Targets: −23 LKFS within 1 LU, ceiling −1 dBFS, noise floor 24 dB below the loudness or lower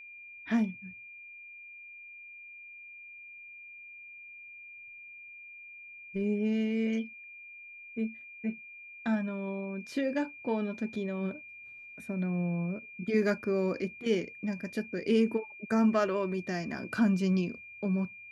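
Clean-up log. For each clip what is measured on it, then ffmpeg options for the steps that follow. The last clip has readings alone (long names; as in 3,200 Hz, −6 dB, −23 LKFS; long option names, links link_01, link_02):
interfering tone 2,400 Hz; level of the tone −46 dBFS; integrated loudness −32.0 LKFS; sample peak −16.0 dBFS; target loudness −23.0 LKFS
→ -af "bandreject=frequency=2400:width=30"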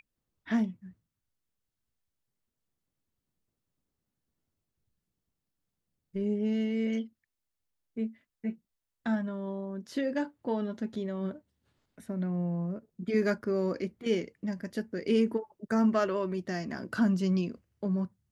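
interfering tone none found; integrated loudness −32.0 LKFS; sample peak −16.0 dBFS; target loudness −23.0 LKFS
→ -af "volume=9dB"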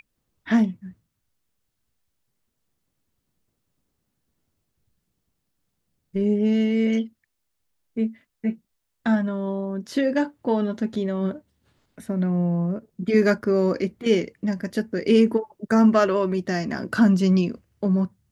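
integrated loudness −23.0 LKFS; sample peak −7.0 dBFS; background noise floor −77 dBFS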